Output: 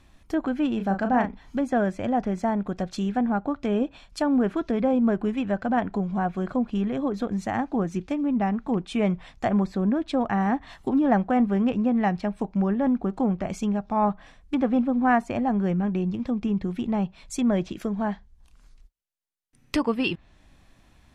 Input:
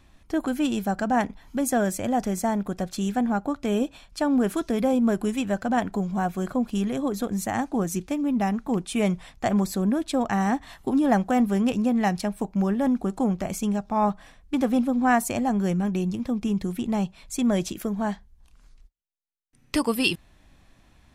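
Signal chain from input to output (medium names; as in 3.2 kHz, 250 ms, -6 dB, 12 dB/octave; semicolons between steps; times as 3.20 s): low-pass that closes with the level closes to 2.4 kHz, closed at -22 dBFS; 0.76–1.59 s: doubling 36 ms -7 dB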